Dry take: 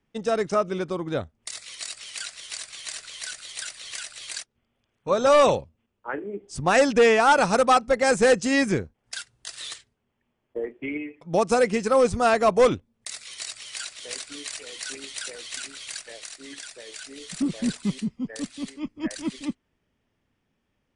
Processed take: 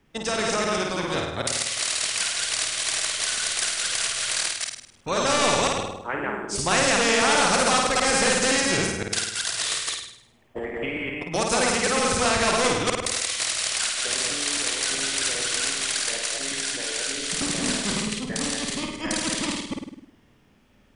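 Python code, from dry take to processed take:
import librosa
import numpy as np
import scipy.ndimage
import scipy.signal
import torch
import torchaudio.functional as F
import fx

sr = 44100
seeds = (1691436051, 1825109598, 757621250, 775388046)

y = fx.reverse_delay(x, sr, ms=129, wet_db=-0.5)
y = fx.room_flutter(y, sr, wall_m=8.9, rt60_s=0.6)
y = fx.spectral_comp(y, sr, ratio=2.0)
y = y * librosa.db_to_amplitude(-5.0)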